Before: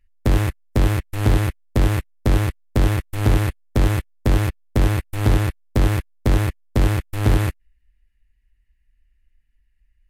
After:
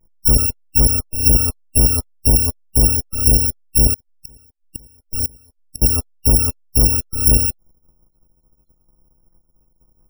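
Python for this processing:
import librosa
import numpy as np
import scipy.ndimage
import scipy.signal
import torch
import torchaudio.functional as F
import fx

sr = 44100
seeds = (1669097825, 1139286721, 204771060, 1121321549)

y = fx.bit_reversed(x, sr, seeds[0], block=256)
y = fx.spec_topn(y, sr, count=64)
y = fx.gate_flip(y, sr, shuts_db=-15.0, range_db=-33, at=(3.93, 5.82))
y = y * librosa.db_to_amplitude(3.5)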